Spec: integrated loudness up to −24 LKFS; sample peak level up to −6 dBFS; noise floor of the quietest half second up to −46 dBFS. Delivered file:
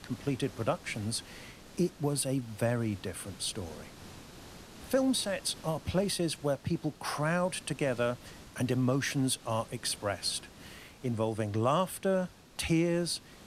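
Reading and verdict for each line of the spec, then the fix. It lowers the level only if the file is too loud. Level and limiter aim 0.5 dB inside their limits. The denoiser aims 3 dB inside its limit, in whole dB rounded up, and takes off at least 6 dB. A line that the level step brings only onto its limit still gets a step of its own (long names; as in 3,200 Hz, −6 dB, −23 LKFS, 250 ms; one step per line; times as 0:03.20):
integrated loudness −32.5 LKFS: in spec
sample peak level −16.5 dBFS: in spec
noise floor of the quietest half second −50 dBFS: in spec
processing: no processing needed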